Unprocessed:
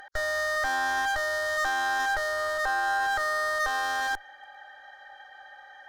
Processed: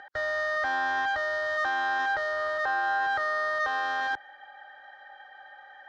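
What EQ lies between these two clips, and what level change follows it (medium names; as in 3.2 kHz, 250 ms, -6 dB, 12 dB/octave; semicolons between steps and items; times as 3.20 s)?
band-pass 100–4000 Hz; distance through air 67 m; 0.0 dB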